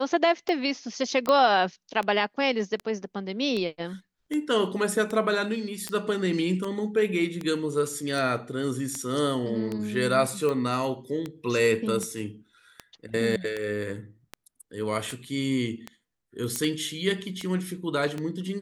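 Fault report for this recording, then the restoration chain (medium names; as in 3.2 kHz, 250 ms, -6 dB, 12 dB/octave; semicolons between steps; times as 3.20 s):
tick 78 rpm -18 dBFS
1.29 s: pop -12 dBFS
5.89 s: pop -15 dBFS
16.56 s: pop -12 dBFS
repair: de-click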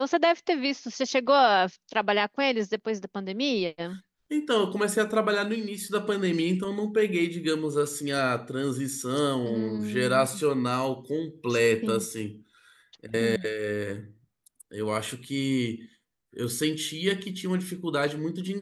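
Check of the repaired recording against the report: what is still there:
nothing left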